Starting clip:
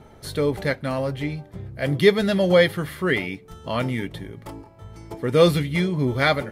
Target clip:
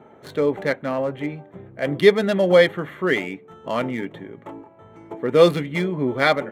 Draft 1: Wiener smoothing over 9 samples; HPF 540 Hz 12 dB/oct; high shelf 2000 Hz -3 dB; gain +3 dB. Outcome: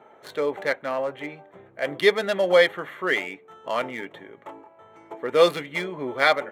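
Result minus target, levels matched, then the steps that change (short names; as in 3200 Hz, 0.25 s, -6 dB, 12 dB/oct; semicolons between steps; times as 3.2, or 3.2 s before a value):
250 Hz band -7.0 dB
change: HPF 230 Hz 12 dB/oct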